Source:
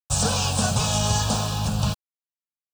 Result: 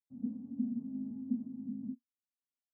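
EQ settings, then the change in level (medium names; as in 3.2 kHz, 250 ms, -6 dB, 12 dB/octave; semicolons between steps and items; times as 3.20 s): Butterworth band-pass 250 Hz, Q 7.4; distance through air 480 m; +5.5 dB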